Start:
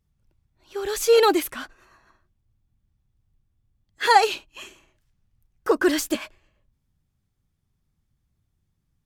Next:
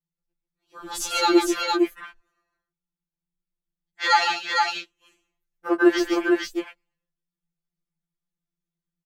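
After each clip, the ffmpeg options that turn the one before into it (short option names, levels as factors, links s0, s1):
-af "afwtdn=0.0224,aecho=1:1:141|458:0.422|0.708,afftfilt=real='re*2.83*eq(mod(b,8),0)':imag='im*2.83*eq(mod(b,8),0)':win_size=2048:overlap=0.75,volume=1.5"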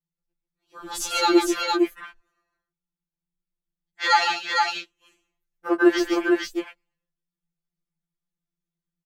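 -af anull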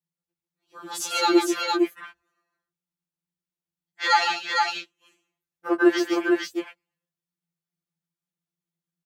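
-af "highpass=f=49:w=0.5412,highpass=f=49:w=1.3066,volume=0.891"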